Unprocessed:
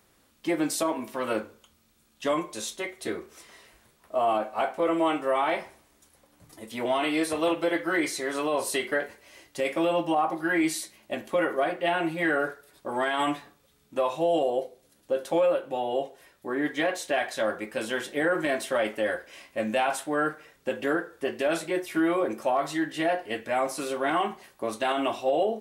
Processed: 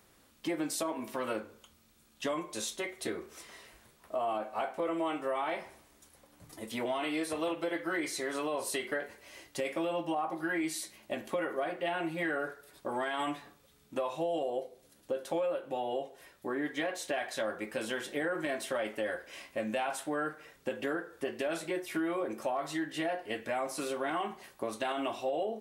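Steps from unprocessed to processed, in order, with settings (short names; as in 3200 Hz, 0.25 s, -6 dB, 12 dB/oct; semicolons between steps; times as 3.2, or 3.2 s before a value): compressor 2.5:1, threshold -34 dBFS, peak gain reduction 9.5 dB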